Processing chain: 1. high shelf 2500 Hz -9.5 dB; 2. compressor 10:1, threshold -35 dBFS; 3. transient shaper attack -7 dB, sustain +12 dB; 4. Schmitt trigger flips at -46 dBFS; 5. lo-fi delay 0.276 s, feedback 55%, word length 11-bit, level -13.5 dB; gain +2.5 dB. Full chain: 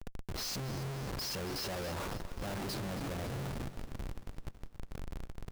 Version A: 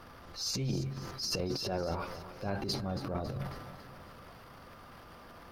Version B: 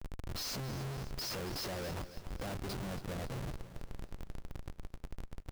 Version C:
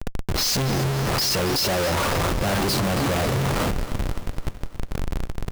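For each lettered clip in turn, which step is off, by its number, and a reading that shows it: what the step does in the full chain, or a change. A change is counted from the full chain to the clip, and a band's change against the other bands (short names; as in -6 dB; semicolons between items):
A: 4, crest factor change +9.5 dB; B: 3, loudness change -2.0 LU; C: 2, mean gain reduction 11.0 dB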